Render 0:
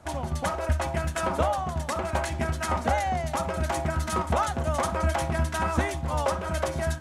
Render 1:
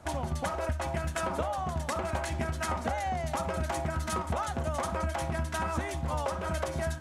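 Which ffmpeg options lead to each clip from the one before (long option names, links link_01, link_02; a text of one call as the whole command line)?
ffmpeg -i in.wav -af "acompressor=threshold=-28dB:ratio=6" out.wav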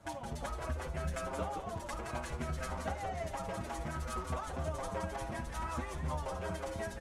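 ffmpeg -i in.wav -filter_complex "[0:a]tremolo=f=2.8:d=0.37,asplit=5[link_01][link_02][link_03][link_04][link_05];[link_02]adelay=170,afreqshift=-130,volume=-6dB[link_06];[link_03]adelay=340,afreqshift=-260,volume=-15.1dB[link_07];[link_04]adelay=510,afreqshift=-390,volume=-24.2dB[link_08];[link_05]adelay=680,afreqshift=-520,volume=-33.4dB[link_09];[link_01][link_06][link_07][link_08][link_09]amix=inputs=5:normalize=0,asplit=2[link_10][link_11];[link_11]adelay=6.9,afreqshift=0.59[link_12];[link_10][link_12]amix=inputs=2:normalize=1,volume=-3dB" out.wav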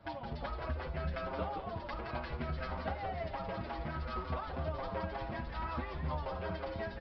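ffmpeg -i in.wav -af "aresample=11025,aresample=44100" out.wav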